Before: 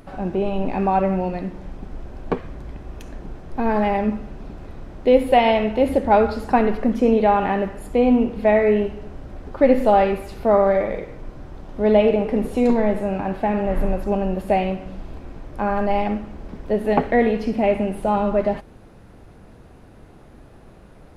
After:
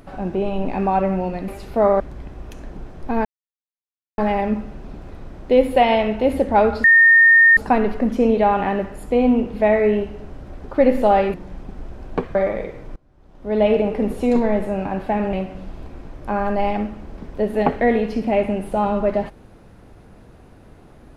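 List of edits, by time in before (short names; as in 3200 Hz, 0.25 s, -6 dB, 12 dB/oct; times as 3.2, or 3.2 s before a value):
1.48–2.49 swap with 10.17–10.69
3.74 insert silence 0.93 s
6.4 add tone 1830 Hz -7.5 dBFS 0.73 s
11.3–12.04 fade in quadratic, from -22 dB
13.67–14.64 cut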